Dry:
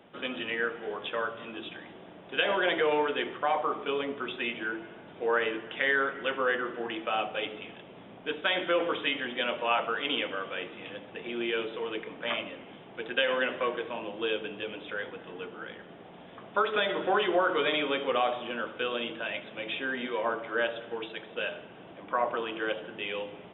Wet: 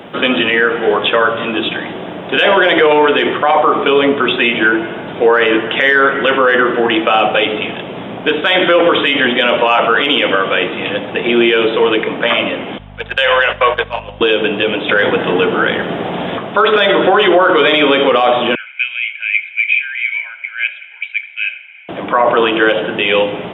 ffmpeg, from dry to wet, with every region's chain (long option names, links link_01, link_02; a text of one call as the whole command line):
ffmpeg -i in.wav -filter_complex "[0:a]asettb=1/sr,asplit=3[link_01][link_02][link_03];[link_01]atrim=end=12.784[link_04];[link_02]atrim=start=12.78:end=14.21,asetpts=PTS-STARTPTS,afade=type=in:duration=0.004:curve=qsin,afade=type=out:start_time=1.426:duration=0.004:curve=qsin,agate=range=-14dB:threshold=-35dB:ratio=16:release=100:detection=peak,highpass=frequency=550:width=0.5412,highpass=frequency=550:width=1.3066,aeval=exprs='val(0)+0.002*(sin(2*PI*50*n/s)+sin(2*PI*2*50*n/s)/2+sin(2*PI*3*50*n/s)/3+sin(2*PI*4*50*n/s)/4+sin(2*PI*5*50*n/s)/5)':channel_layout=same[link_05];[link_03]atrim=start=14.206[link_06];[link_04][link_05]acrossfade=duration=0.004:curve1=hsin:curve2=qsin[link_07];[link_07][link_06]acrossfade=duration=0.004:curve1=qsin:curve2=hsin,asettb=1/sr,asplit=3[link_08][link_09][link_10];[link_08]atrim=end=14.894[link_11];[link_09]atrim=start=14.89:end=16.38,asetpts=PTS-STARTPTS,afade=type=in:duration=0.004:curve=qsin,afade=type=out:start_time=1.486:duration=0.004:curve=qsin,acontrast=51,highpass=42[link_12];[link_10]atrim=start=16.376[link_13];[link_11][link_12]acrossfade=duration=0.004:curve1=hsin:curve2=qsin[link_14];[link_14][link_13]acrossfade=duration=0.004:curve1=qsin:curve2=hsin,asettb=1/sr,asplit=3[link_15][link_16][link_17];[link_15]atrim=end=18.554[link_18];[link_16]atrim=start=18.55:end=21.89,asetpts=PTS-STARTPTS,afade=type=in:duration=0.004:curve=qsin,afade=type=out:start_time=3.336:duration=0.004:curve=qsin,asuperpass=centerf=2300:order=4:qfactor=4.5,aecho=1:1:1.3:0.93,atrim=end_sample=147294[link_19];[link_17]atrim=start=21.886[link_20];[link_18][link_19]acrossfade=duration=0.004:curve1=hsin:curve2=qsin[link_21];[link_21][link_20]acrossfade=duration=0.004:curve1=qsin:curve2=hsin,acontrast=55,highpass=62,alimiter=level_in=18dB:limit=-1dB:release=50:level=0:latency=1,volume=-1dB" out.wav